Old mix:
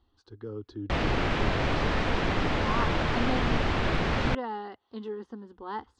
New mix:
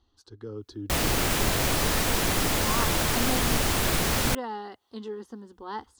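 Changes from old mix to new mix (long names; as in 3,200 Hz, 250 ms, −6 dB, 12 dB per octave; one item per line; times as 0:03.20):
background: remove high-frequency loss of the air 96 metres
master: remove low-pass filter 3,200 Hz 12 dB per octave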